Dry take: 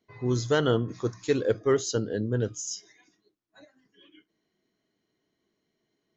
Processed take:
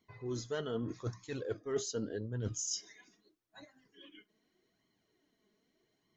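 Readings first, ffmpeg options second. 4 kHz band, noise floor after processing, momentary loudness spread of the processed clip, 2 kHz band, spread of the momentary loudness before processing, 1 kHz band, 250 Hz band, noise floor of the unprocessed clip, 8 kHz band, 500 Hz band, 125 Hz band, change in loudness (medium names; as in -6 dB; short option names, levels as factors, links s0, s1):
-8.0 dB, -80 dBFS, 21 LU, -13.5 dB, 9 LU, -14.5 dB, -11.5 dB, -80 dBFS, no reading, -12.5 dB, -11.0 dB, -11.0 dB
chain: -af "areverse,acompressor=threshold=0.02:ratio=20,areverse,flanger=delay=0.9:depth=3.9:regen=29:speed=0.82:shape=sinusoidal,volume=1.68"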